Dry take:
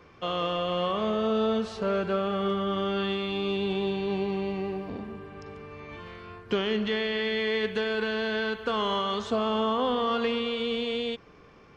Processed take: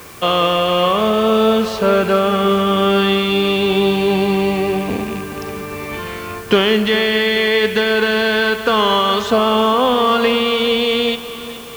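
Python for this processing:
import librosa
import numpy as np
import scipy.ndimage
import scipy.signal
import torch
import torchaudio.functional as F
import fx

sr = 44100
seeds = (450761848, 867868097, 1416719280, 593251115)

p1 = fx.rattle_buzz(x, sr, strikes_db=-41.0, level_db=-38.0)
p2 = fx.low_shelf(p1, sr, hz=440.0, db=-3.5)
p3 = fx.rider(p2, sr, range_db=4, speed_s=0.5)
p4 = p2 + (p3 * librosa.db_to_amplitude(2.5))
p5 = fx.quant_dither(p4, sr, seeds[0], bits=8, dither='triangular')
p6 = p5 + fx.echo_feedback(p5, sr, ms=418, feedback_pct=53, wet_db=-14.0, dry=0)
y = p6 * librosa.db_to_amplitude(7.0)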